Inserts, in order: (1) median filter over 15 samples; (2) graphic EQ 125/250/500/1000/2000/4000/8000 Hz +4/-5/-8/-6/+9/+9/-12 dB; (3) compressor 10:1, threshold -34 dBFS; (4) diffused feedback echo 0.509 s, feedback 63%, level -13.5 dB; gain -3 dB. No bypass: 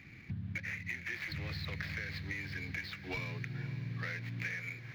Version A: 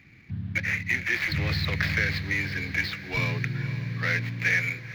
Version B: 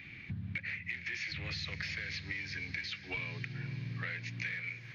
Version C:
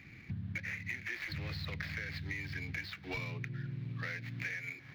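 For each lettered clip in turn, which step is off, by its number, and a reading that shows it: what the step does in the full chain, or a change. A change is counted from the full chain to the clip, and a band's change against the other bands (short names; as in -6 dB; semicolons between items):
3, momentary loudness spread change +4 LU; 1, 4 kHz band +6.5 dB; 4, echo-to-direct -11.5 dB to none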